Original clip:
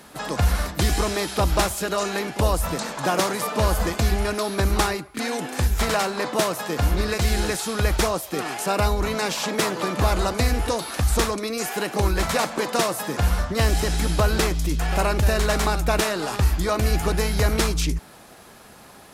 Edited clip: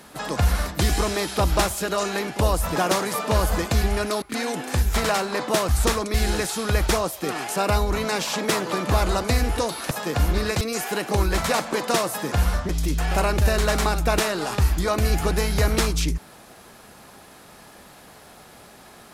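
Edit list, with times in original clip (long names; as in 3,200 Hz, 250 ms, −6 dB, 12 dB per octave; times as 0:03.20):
0:02.76–0:03.04: remove
0:04.50–0:05.07: remove
0:06.54–0:07.24: swap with 0:11.01–0:11.46
0:13.54–0:14.50: remove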